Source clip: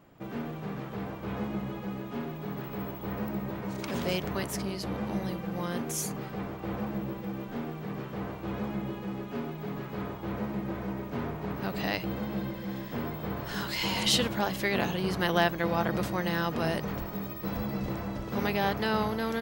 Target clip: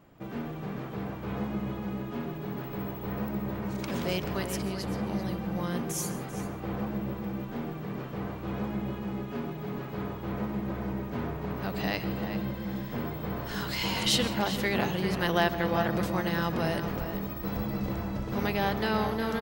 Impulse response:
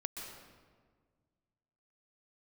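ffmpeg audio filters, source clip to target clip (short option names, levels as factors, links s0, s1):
-filter_complex "[0:a]asplit=2[s0][s1];[s1]adelay=390.7,volume=0.398,highshelf=f=4000:g=-8.79[s2];[s0][s2]amix=inputs=2:normalize=0,asplit=2[s3][s4];[1:a]atrim=start_sample=2205,afade=t=out:st=0.22:d=0.01,atrim=end_sample=10143,lowshelf=f=160:g=8[s5];[s4][s5]afir=irnorm=-1:irlink=0,volume=0.631[s6];[s3][s6]amix=inputs=2:normalize=0,volume=0.631"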